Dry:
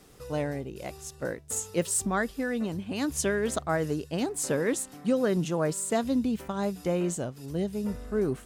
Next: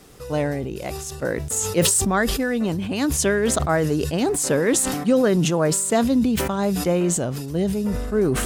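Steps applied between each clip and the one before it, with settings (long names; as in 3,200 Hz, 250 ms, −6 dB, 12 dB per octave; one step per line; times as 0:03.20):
level that may fall only so fast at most 34 dB per second
level +7 dB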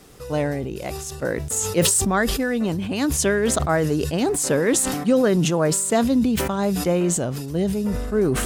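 no processing that can be heard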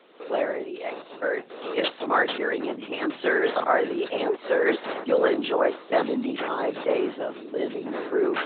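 linear-prediction vocoder at 8 kHz whisper
high-pass filter 300 Hz 24 dB per octave
dynamic equaliser 1,400 Hz, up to +4 dB, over −36 dBFS, Q 0.79
level −1.5 dB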